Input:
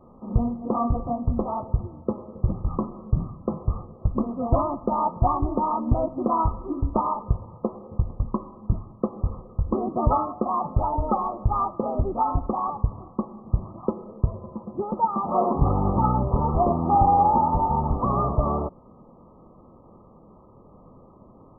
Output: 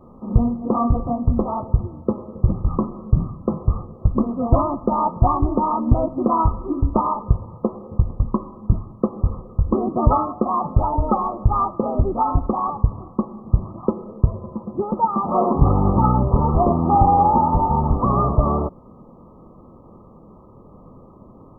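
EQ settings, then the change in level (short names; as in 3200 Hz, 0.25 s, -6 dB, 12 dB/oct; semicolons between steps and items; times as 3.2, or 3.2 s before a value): bell 730 Hz -3.5 dB 1.1 oct; +6.0 dB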